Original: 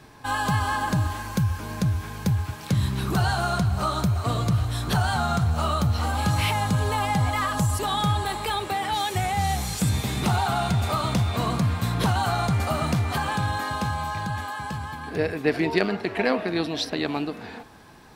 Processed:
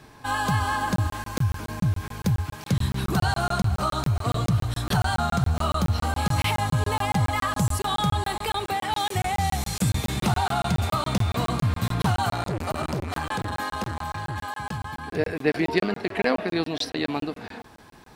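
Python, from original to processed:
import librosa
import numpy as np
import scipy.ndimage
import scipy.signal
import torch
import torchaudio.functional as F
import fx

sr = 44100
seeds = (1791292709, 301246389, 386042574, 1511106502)

y = fx.buffer_crackle(x, sr, first_s=0.96, period_s=0.14, block=1024, kind='zero')
y = fx.transformer_sat(y, sr, knee_hz=560.0, at=(12.3, 14.36))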